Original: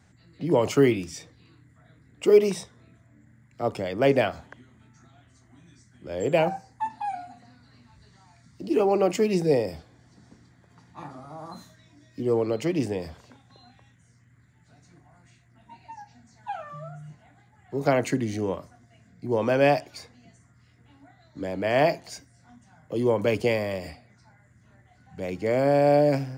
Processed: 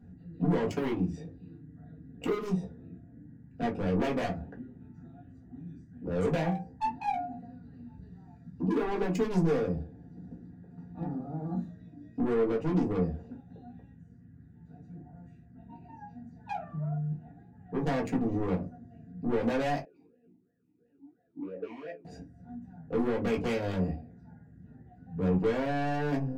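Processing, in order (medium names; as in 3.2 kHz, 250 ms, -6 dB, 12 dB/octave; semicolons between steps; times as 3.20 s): local Wiener filter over 41 samples; compression 4:1, threshold -28 dBFS, peak gain reduction 14 dB; saturation -33.5 dBFS, distortion -8 dB; reverberation RT60 0.20 s, pre-delay 4 ms, DRR -2.5 dB; 19.85–22.05 s: talking filter e-u 2.9 Hz; trim +2 dB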